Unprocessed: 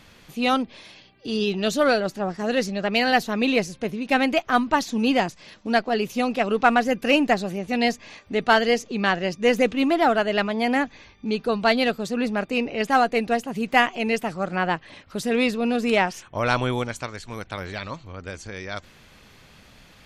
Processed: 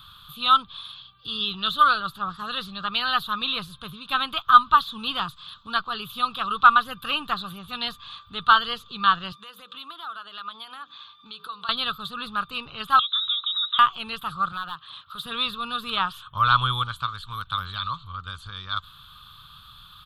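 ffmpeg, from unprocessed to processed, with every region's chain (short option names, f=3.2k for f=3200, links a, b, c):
-filter_complex "[0:a]asettb=1/sr,asplit=3[a][b][c];[a]atrim=end=9.324[d];[b]atrim=start=9.32:end=11.69,asetpts=PTS-STARTPTS,afade=t=in:d=0.004:c=qsin,afade=t=out:st=2.366:d=0.004:c=qsin,highpass=300,bandreject=f=60:t=h:w=6,bandreject=f=120:t=h:w=6,bandreject=f=180:t=h:w=6,bandreject=f=240:t=h:w=6,bandreject=f=300:t=h:w=6,bandreject=f=360:t=h:w=6,bandreject=f=420:t=h:w=6,bandreject=f=480:t=h:w=6,bandreject=f=540:t=h:w=6,acompressor=threshold=-32dB:ratio=6:attack=3.2:release=140:knee=1:detection=peak[e];[c]atrim=start=11.686[f];[d][e]acrossfade=d=0.004:c1=hsin:c2=qsin[g];[g][f]acrossfade=d=0.004:c1=qsin:c2=hsin,asettb=1/sr,asplit=3[h][i][j];[h]atrim=end=12.994[k];[i]atrim=start=12.99:end=13.79,asetpts=PTS-STARTPTS,afade=t=in:d=0.004:c=qsin,afade=t=out:st=0.796:d=0.004:c=qsin,acompressor=threshold=-31dB:ratio=12:attack=3.2:release=140:knee=1:detection=peak,lowpass=f=3.4k:t=q:w=0.5098,lowpass=f=3.4k:t=q:w=0.6013,lowpass=f=3.4k:t=q:w=0.9,lowpass=f=3.4k:t=q:w=2.563,afreqshift=-4000[l];[j]atrim=start=13.786[m];[k][l]acrossfade=d=0.004:c1=hsin:c2=qsin[n];[n][m]acrossfade=d=0.004:c1=qsin:c2=hsin,asettb=1/sr,asplit=3[o][p][q];[o]atrim=end=14.524[r];[p]atrim=start=14.52:end=15.26,asetpts=PTS-STARTPTS,afade=t=in:d=0.004:c=qsin,afade=t=out:st=0.736:d=0.004:c=qsin,highpass=f=290:p=1,acompressor=threshold=-29dB:ratio=2:attack=3.2:release=140:knee=1:detection=peak,asoftclip=type=hard:threshold=-26.5dB[s];[q]atrim=start=15.256[t];[r][s]acrossfade=d=0.004:c1=hsin:c2=qsin[u];[u][t]acrossfade=d=0.004:c1=qsin:c2=hsin,acrossover=split=4000[v][w];[w]acompressor=threshold=-42dB:ratio=4:attack=1:release=60[x];[v][x]amix=inputs=2:normalize=0,firequalizer=gain_entry='entry(140,0);entry(240,-19);entry(660,-20);entry(1200,14);entry(2000,-18);entry(3500,14);entry(5700,-18);entry(11000,6)':delay=0.05:min_phase=1"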